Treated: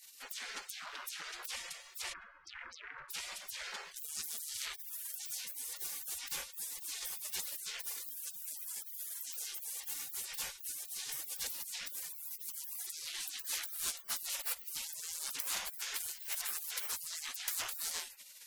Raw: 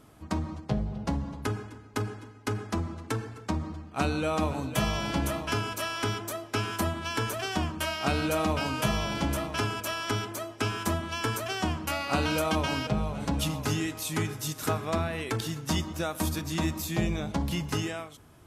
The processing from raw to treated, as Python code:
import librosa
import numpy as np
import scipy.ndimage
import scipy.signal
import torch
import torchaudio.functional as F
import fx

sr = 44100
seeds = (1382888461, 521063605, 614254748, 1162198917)

y = fx.lowpass_res(x, sr, hz=710.0, q=3.8, at=(2.12, 3.1), fade=0.02)
y = fx.fold_sine(y, sr, drive_db=17, ceiling_db=-14.0)
y = fx.spec_gate(y, sr, threshold_db=-30, keep='weak')
y = F.gain(torch.from_numpy(y), -3.5).numpy()